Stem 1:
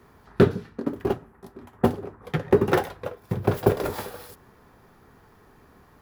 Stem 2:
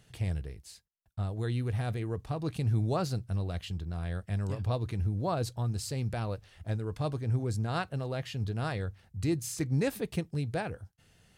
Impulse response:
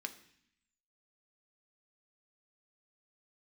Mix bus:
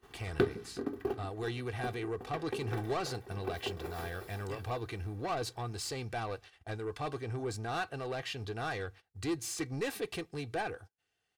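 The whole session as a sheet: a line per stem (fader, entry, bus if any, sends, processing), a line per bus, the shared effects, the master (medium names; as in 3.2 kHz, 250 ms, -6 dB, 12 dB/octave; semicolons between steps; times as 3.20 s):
+0.5 dB, 0.00 s, send -15.5 dB, echo send -22.5 dB, compression 4:1, threshold -25 dBFS, peak gain reduction 12 dB; auto duck -20 dB, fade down 1.95 s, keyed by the second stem
-9.5 dB, 0.00 s, send -19 dB, no echo send, treble shelf 4 kHz -2.5 dB; overdrive pedal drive 21 dB, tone 5.7 kHz, clips at -18 dBFS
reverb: on, RT60 0.65 s, pre-delay 3 ms
echo: feedback delay 370 ms, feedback 40%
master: gate -52 dBFS, range -21 dB; comb 2.6 ms, depth 51%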